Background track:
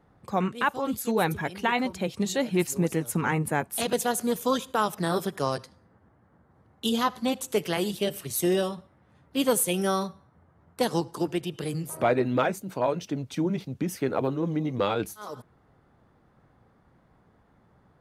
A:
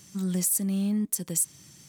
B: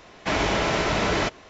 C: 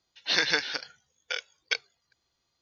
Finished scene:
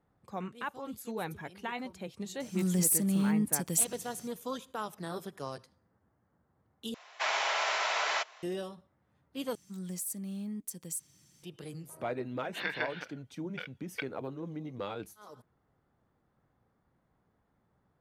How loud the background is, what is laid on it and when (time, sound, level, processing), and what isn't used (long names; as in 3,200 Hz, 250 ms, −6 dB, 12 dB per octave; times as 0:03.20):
background track −12.5 dB
0:02.40: mix in A −1.5 dB
0:06.94: overwrite with B −4.5 dB + high-pass filter 700 Hz 24 dB per octave
0:09.55: overwrite with A −12 dB
0:12.27: mix in C −8 dB + low-pass filter 2,900 Hz 24 dB per octave